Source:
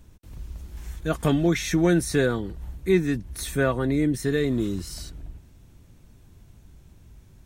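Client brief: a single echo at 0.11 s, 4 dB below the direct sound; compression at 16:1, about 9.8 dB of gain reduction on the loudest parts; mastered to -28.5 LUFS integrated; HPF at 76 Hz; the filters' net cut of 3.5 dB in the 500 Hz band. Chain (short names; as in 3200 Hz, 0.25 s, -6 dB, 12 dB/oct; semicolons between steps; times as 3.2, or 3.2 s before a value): HPF 76 Hz; bell 500 Hz -5 dB; compressor 16:1, threshold -27 dBFS; echo 0.11 s -4 dB; gain +3 dB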